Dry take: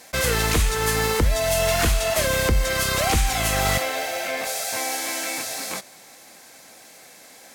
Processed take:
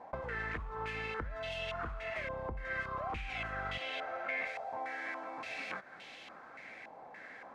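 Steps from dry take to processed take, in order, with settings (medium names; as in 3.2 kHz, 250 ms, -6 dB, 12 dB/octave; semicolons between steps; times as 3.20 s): compression 10:1, threshold -34 dBFS, peak gain reduction 18.5 dB; step-sequenced low-pass 3.5 Hz 910–3000 Hz; trim -5 dB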